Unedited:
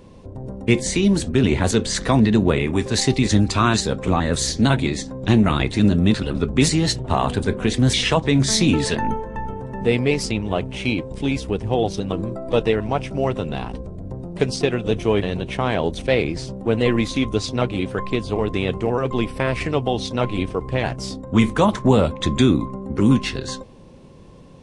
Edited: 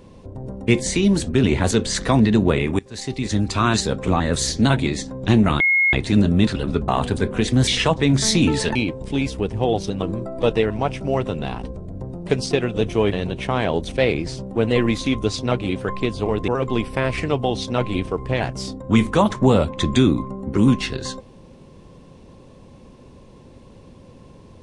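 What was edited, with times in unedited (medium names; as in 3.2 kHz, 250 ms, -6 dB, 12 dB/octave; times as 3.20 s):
2.79–3.78 s: fade in, from -23.5 dB
5.60 s: add tone 2.16 kHz -13.5 dBFS 0.33 s
6.55–7.14 s: delete
9.01–10.85 s: delete
18.58–18.91 s: delete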